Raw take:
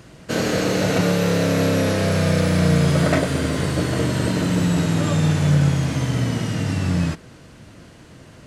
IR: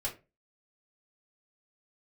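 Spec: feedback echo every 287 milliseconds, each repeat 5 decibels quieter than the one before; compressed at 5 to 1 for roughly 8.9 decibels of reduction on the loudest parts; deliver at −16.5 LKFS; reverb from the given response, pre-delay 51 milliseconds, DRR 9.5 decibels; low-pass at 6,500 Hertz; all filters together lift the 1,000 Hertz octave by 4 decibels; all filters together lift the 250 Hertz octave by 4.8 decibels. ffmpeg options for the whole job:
-filter_complex "[0:a]lowpass=6500,equalizer=frequency=250:width_type=o:gain=7,equalizer=frequency=1000:width_type=o:gain=5,acompressor=threshold=-20dB:ratio=5,aecho=1:1:287|574|861|1148|1435|1722|2009:0.562|0.315|0.176|0.0988|0.0553|0.031|0.0173,asplit=2[link_01][link_02];[1:a]atrim=start_sample=2205,adelay=51[link_03];[link_02][link_03]afir=irnorm=-1:irlink=0,volume=-12dB[link_04];[link_01][link_04]amix=inputs=2:normalize=0,volume=5.5dB"

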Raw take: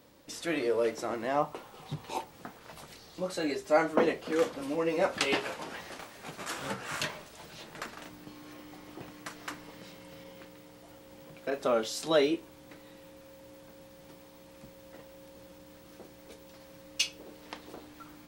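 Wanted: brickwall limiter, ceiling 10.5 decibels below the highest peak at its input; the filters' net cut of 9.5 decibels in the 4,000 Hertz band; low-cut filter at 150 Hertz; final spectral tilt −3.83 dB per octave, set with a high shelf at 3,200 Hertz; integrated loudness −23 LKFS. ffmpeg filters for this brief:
ffmpeg -i in.wav -af "highpass=150,highshelf=frequency=3200:gain=-7,equalizer=frequency=4000:width_type=o:gain=-8,volume=14dB,alimiter=limit=-9.5dB:level=0:latency=1" out.wav

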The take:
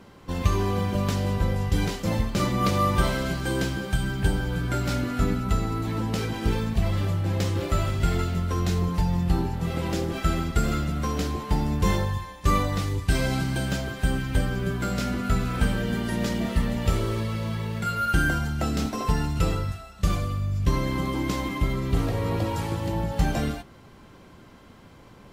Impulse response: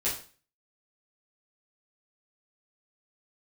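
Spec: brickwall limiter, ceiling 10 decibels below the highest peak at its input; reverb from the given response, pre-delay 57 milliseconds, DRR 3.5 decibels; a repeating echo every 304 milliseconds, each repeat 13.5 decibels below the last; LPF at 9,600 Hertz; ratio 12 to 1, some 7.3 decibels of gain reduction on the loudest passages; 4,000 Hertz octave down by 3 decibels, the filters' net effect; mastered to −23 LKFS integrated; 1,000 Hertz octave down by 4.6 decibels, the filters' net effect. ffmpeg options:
-filter_complex "[0:a]lowpass=9600,equalizer=frequency=1000:width_type=o:gain=-6,equalizer=frequency=4000:width_type=o:gain=-3.5,acompressor=threshold=-24dB:ratio=12,alimiter=level_in=0.5dB:limit=-24dB:level=0:latency=1,volume=-0.5dB,aecho=1:1:304|608:0.211|0.0444,asplit=2[link_01][link_02];[1:a]atrim=start_sample=2205,adelay=57[link_03];[link_02][link_03]afir=irnorm=-1:irlink=0,volume=-10.5dB[link_04];[link_01][link_04]amix=inputs=2:normalize=0,volume=8.5dB"

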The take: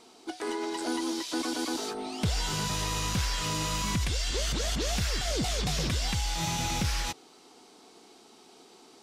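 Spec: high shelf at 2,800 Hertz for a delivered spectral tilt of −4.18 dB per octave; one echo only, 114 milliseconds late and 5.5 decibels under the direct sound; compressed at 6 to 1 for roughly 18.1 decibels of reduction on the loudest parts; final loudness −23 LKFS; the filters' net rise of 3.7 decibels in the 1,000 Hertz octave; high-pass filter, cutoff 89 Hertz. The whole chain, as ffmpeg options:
ffmpeg -i in.wav -af "highpass=89,equalizer=frequency=1000:width_type=o:gain=5.5,highshelf=frequency=2800:gain=-9,acompressor=threshold=-46dB:ratio=6,aecho=1:1:114:0.531,volume=24.5dB" out.wav

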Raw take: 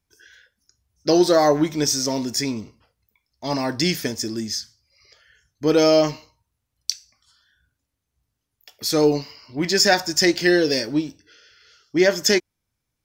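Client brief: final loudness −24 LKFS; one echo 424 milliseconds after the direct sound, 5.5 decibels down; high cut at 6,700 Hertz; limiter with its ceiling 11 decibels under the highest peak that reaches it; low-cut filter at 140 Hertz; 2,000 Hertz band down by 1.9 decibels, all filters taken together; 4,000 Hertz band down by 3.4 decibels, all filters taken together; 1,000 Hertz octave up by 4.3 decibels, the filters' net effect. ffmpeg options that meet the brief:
ffmpeg -i in.wav -af "highpass=140,lowpass=6700,equalizer=frequency=1000:width_type=o:gain=7,equalizer=frequency=2000:width_type=o:gain=-4,equalizer=frequency=4000:width_type=o:gain=-3,alimiter=limit=-13.5dB:level=0:latency=1,aecho=1:1:424:0.531,volume=1dB" out.wav

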